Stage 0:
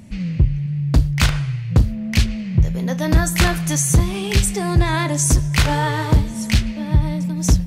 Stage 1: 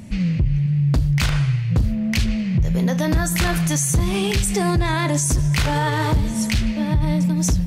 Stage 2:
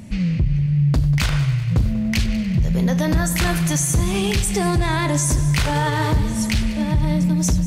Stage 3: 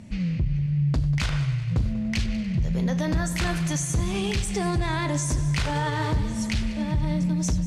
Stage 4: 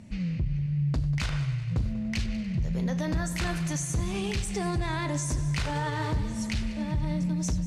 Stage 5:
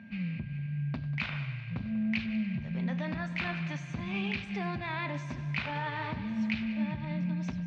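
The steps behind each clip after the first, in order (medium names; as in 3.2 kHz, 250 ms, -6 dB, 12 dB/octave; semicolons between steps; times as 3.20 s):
peak limiter -15.5 dBFS, peak gain reduction 10.5 dB; trim +4 dB
multi-head delay 96 ms, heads first and second, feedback 64%, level -19 dB
low-pass 8.1 kHz 12 dB/octave; trim -6 dB
band-stop 3.3 kHz, Q 28; trim -4 dB
cabinet simulation 160–3700 Hz, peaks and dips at 220 Hz +7 dB, 320 Hz -7 dB, 460 Hz -9 dB, 2.4 kHz +9 dB; whistle 1.6 kHz -54 dBFS; trim -3 dB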